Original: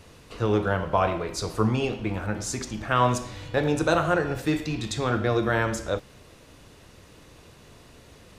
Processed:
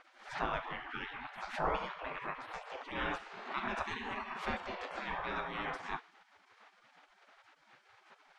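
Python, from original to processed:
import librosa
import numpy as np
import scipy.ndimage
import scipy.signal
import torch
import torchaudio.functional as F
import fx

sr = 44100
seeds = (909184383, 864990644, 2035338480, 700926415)

y = fx.low_shelf(x, sr, hz=150.0, db=5.5)
y = fx.comb_fb(y, sr, f0_hz=56.0, decay_s=0.19, harmonics='all', damping=0.0, mix_pct=50)
y = fx.spec_gate(y, sr, threshold_db=-25, keep='weak')
y = scipy.signal.sosfilt(scipy.signal.butter(2, 1400.0, 'lowpass', fs=sr, output='sos'), y)
y = fx.pre_swell(y, sr, db_per_s=110.0)
y = y * 10.0 ** (11.0 / 20.0)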